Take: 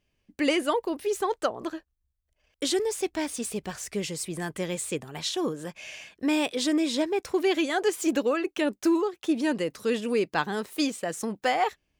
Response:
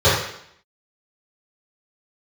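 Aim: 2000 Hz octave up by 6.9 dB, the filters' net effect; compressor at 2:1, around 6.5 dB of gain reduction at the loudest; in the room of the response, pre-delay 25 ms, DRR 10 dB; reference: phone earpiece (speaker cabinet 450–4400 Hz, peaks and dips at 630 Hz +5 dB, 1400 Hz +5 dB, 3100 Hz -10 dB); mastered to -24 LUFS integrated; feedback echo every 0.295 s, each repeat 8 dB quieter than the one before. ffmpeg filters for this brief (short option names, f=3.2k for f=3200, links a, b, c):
-filter_complex "[0:a]equalizer=f=2k:t=o:g=8,acompressor=threshold=-30dB:ratio=2,aecho=1:1:295|590|885|1180|1475:0.398|0.159|0.0637|0.0255|0.0102,asplit=2[a][b];[1:a]atrim=start_sample=2205,adelay=25[c];[b][c]afir=irnorm=-1:irlink=0,volume=-34.5dB[d];[a][d]amix=inputs=2:normalize=0,highpass=450,equalizer=f=630:t=q:w=4:g=5,equalizer=f=1.4k:t=q:w=4:g=5,equalizer=f=3.1k:t=q:w=4:g=-10,lowpass=f=4.4k:w=0.5412,lowpass=f=4.4k:w=1.3066,volume=8dB"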